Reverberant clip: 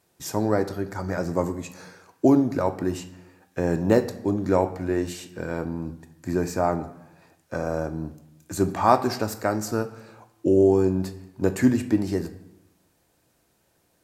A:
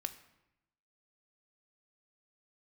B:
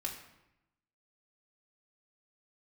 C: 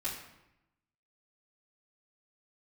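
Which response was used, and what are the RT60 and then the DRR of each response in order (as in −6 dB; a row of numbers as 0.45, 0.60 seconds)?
A; 0.90, 0.90, 0.90 seconds; 7.5, −2.0, −10.0 decibels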